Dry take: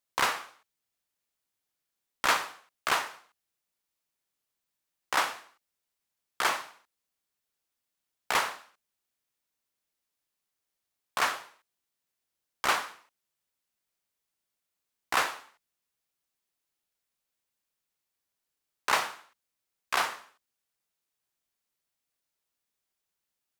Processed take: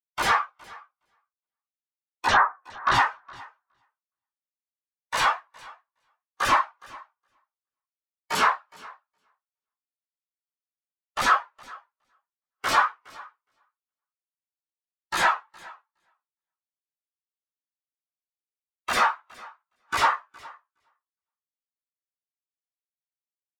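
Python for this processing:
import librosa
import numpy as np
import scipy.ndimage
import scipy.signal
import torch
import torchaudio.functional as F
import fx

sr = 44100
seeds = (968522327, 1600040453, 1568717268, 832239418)

y = fx.lowpass(x, sr, hz=2000.0, slope=24, at=(2.26, 2.93), fade=0.02)
y = fx.fold_sine(y, sr, drive_db=18, ceiling_db=-11.5)
y = fx.echo_feedback(y, sr, ms=415, feedback_pct=30, wet_db=-9)
y = fx.spectral_expand(y, sr, expansion=2.5)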